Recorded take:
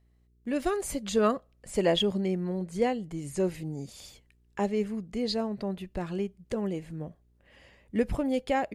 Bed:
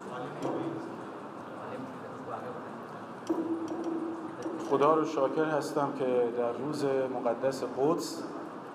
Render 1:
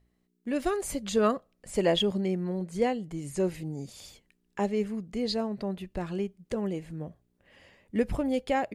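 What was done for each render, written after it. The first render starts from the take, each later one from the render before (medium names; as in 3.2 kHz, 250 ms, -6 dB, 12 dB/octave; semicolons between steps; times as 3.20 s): de-hum 60 Hz, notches 2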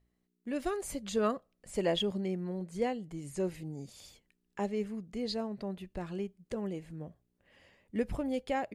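trim -5.5 dB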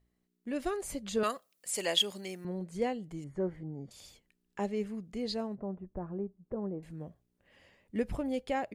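1.23–2.45 s: tilt EQ +4.5 dB/octave; 3.24–3.91 s: Savitzky-Golay filter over 41 samples; 5.55–6.83 s: low-pass 1.2 kHz 24 dB/octave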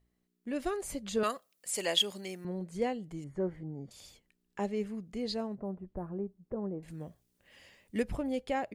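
5.65–6.09 s: decimation joined by straight lines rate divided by 4×; 6.88–8.03 s: treble shelf 2.5 kHz +11.5 dB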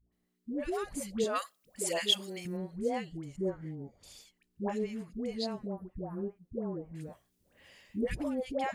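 phase dispersion highs, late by 125 ms, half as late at 680 Hz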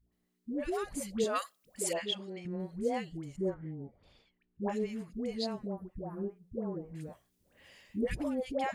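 1.93–2.60 s: tape spacing loss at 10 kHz 25 dB; 3.54–4.63 s: distance through air 410 m; 5.89–7.03 s: hum notches 60/120/180/240/300/360/420/480 Hz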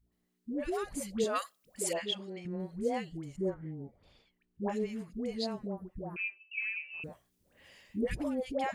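6.16–7.04 s: frequency inversion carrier 2.8 kHz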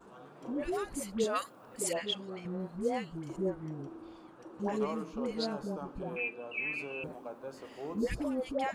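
add bed -14 dB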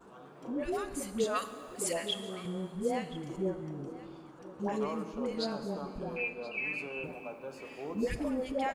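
delay 1027 ms -18 dB; plate-style reverb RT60 2.2 s, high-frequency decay 0.95×, DRR 10 dB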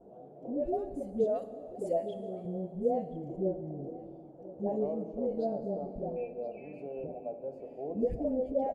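FFT filter 340 Hz 0 dB, 690 Hz +7 dB, 1.1 kHz -25 dB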